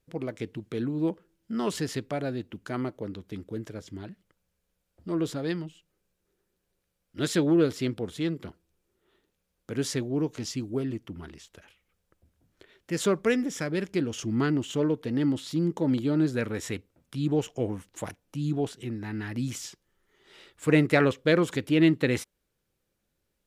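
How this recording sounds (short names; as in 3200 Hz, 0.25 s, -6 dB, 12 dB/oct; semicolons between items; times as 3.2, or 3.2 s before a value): noise floor -79 dBFS; spectral tilt -6.0 dB/oct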